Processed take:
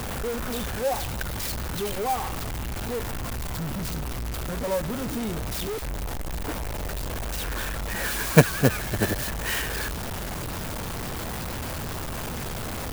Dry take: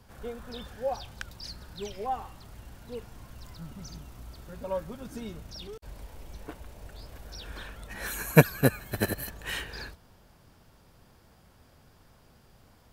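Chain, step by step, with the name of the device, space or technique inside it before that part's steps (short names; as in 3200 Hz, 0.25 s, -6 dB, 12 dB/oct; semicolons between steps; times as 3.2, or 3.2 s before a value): early CD player with a faulty converter (zero-crossing step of -27.5 dBFS; clock jitter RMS 0.048 ms); gain +1.5 dB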